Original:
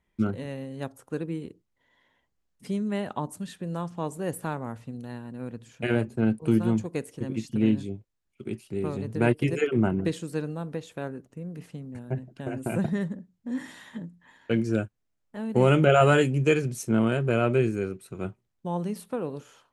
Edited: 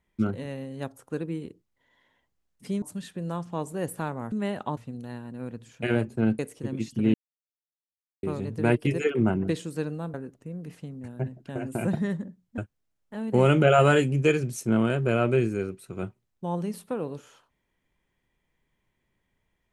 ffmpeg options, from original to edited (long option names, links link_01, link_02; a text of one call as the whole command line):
ffmpeg -i in.wav -filter_complex "[0:a]asplit=9[link_01][link_02][link_03][link_04][link_05][link_06][link_07][link_08][link_09];[link_01]atrim=end=2.822[link_10];[link_02]atrim=start=3.268:end=4.772[link_11];[link_03]atrim=start=2.818:end=3.272[link_12];[link_04]atrim=start=4.768:end=6.392[link_13];[link_05]atrim=start=6.958:end=7.71,asetpts=PTS-STARTPTS,afade=type=out:start_time=0.748:duration=0.004:curve=hsin[link_14];[link_06]atrim=start=7.71:end=8.8,asetpts=PTS-STARTPTS,volume=0[link_15];[link_07]atrim=start=8.8:end=10.712,asetpts=PTS-STARTPTS,afade=type=in:duration=0.004:curve=hsin[link_16];[link_08]atrim=start=11.048:end=13.492[link_17];[link_09]atrim=start=14.798[link_18];[link_10][link_11]acrossfade=duration=0.004:curve1=hsin:curve2=hsin[link_19];[link_19][link_12]acrossfade=duration=0.004:curve1=hsin:curve2=hsin[link_20];[link_20][link_13]acrossfade=duration=0.004:curve1=hsin:curve2=hsin[link_21];[link_14][link_15][link_16]concat=n=3:v=0:a=1[link_22];[link_21][link_22]acrossfade=duration=0.004:curve1=hsin:curve2=hsin[link_23];[link_23][link_17]acrossfade=duration=0.004:curve1=hsin:curve2=hsin[link_24];[link_24][link_18]acrossfade=duration=0.004:curve1=hsin:curve2=hsin" out.wav